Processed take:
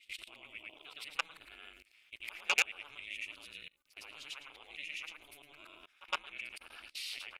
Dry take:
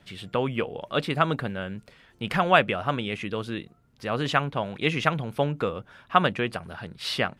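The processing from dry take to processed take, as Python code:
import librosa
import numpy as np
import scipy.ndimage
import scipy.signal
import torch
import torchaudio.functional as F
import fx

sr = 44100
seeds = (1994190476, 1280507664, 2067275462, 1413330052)

y = fx.frame_reverse(x, sr, frame_ms=230.0)
y = fx.level_steps(y, sr, step_db=22)
y = fx.peak_eq(y, sr, hz=2400.0, db=14.5, octaves=0.46)
y = 10.0 ** (-12.0 / 20.0) * np.tanh(y / 10.0 ** (-12.0 / 20.0))
y = F.preemphasis(torch.from_numpy(y), 0.97).numpy()
y = fx.notch(y, sr, hz=1800.0, q=5.5)
y = y * np.sin(2.0 * np.pi * 150.0 * np.arange(len(y)) / sr)
y = y * librosa.db_to_amplitude(8.0)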